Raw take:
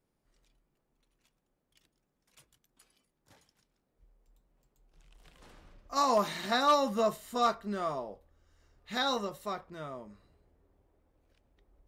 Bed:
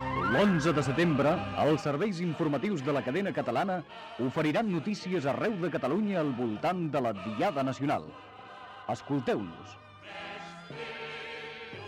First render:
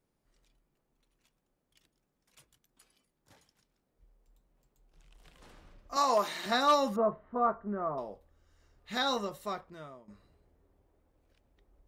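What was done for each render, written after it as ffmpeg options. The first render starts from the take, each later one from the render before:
-filter_complex "[0:a]asettb=1/sr,asplit=3[a][b][c];[a]atrim=end=5.964[d];[b]atrim=start=5.96:end=6.46,asetpts=PTS-STARTPTS,afade=t=in:d=0.004:c=qsin,afade=t=out:st=0.496:d=0.004:c=qsin,highpass=320[e];[c]atrim=start=6.456[f];[d][e]acrossfade=d=0.004:c1=hsin:c2=qsin[g];[g][f]acrossfade=d=0.004:c1=qsin:c2=hsin,asettb=1/sr,asplit=3[h][i][j];[h]atrim=end=6.964[k];[i]atrim=start=6.96:end=7.98,asetpts=PTS-STARTPTS,afade=t=in:d=0.004:c=qsin,afade=t=out:st=1.016:d=0.004:c=qsin,lowpass=f=1.4k:w=0.5412,lowpass=f=1.4k:w=1.3066[l];[j]atrim=start=7.976[m];[k][l]acrossfade=d=0.004:c1=hsin:c2=qsin[n];[n][m]acrossfade=d=0.004:c1=qsin:c2=hsin,asplit=2[o][p];[o]atrim=end=10.08,asetpts=PTS-STARTPTS,afade=t=out:st=9.53:d=0.55:silence=0.199526[q];[p]atrim=start=10.08,asetpts=PTS-STARTPTS,afade=t=in:d=0.004:c=hsin:silence=0.199526[r];[q][r]concat=n=2:v=0:a=1"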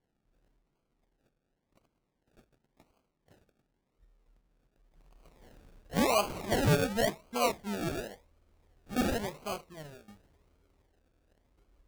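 -af "acrusher=samples=34:mix=1:aa=0.000001:lfo=1:lforange=20.4:lforate=0.92"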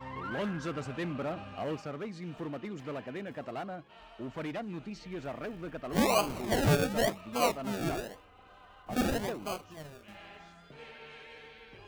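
-filter_complex "[1:a]volume=-9.5dB[a];[0:a][a]amix=inputs=2:normalize=0"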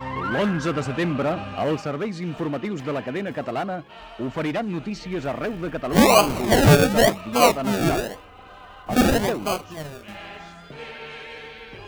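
-af "volume=12dB"

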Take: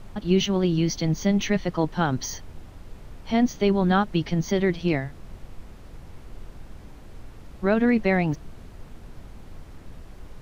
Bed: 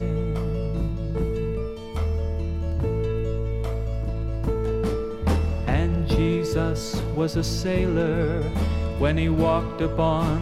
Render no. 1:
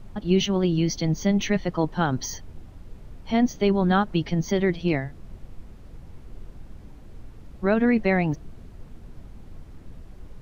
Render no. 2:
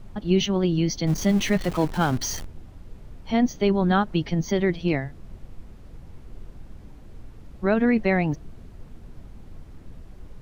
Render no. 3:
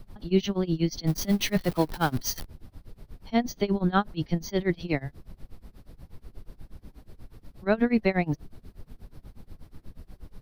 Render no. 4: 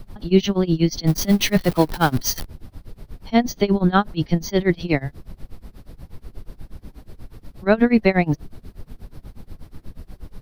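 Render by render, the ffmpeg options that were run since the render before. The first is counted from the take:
-af "afftdn=nr=6:nf=-45"
-filter_complex "[0:a]asettb=1/sr,asplit=3[a][b][c];[a]atrim=end=1.074[d];[b]atrim=start=1.07:end=2.47,asetpts=PTS-STARTPTS,afade=t=in:d=0.004:c=qsin,afade=t=out:st=1.396:d=0.004:c=qsin,aeval=exprs='val(0)+0.5*0.0299*sgn(val(0))':c=same[e];[c]atrim=start=2.466[f];[d][e]acrossfade=d=0.004:c1=hsin:c2=qsin[g];[g][f]acrossfade=d=0.004:c1=qsin:c2=hsin"
-filter_complex "[0:a]tremolo=f=8.3:d=0.94,acrossover=split=520[a][b];[b]aexciter=amount=1.7:drive=2.5:freq=3.9k[c];[a][c]amix=inputs=2:normalize=0"
-af "volume=7.5dB,alimiter=limit=-2dB:level=0:latency=1"

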